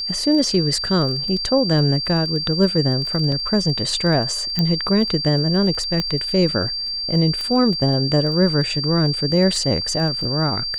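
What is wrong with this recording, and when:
crackle 13/s -27 dBFS
tone 4700 Hz -23 dBFS
3.32 gap 2.5 ms
4.59 pop -7 dBFS
6 pop -9 dBFS
7.41 pop -14 dBFS

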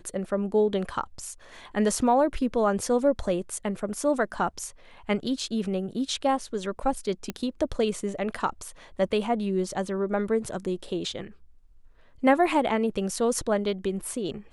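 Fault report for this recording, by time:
7.3 pop -16 dBFS

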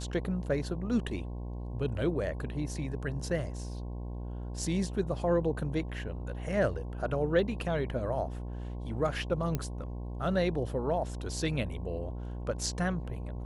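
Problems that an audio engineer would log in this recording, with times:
buzz 60 Hz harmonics 18 -38 dBFS
9.55 pop -17 dBFS

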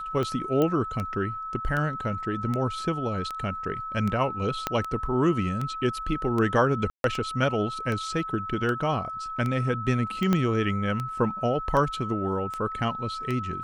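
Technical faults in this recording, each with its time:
tick 78 rpm -18 dBFS
tone 1300 Hz -32 dBFS
0.62 pop -14 dBFS
4.67 pop -10 dBFS
6.9–7.04 gap 0.142 s
10.33 pop -11 dBFS

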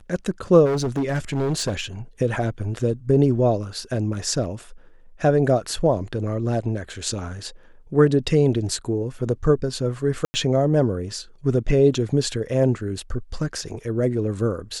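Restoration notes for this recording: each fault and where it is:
0.65–1.81 clipped -19 dBFS
10.25–10.34 gap 90 ms

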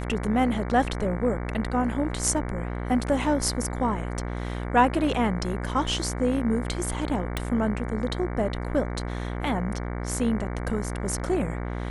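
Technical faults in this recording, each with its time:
buzz 60 Hz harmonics 38 -31 dBFS
7.37 pop

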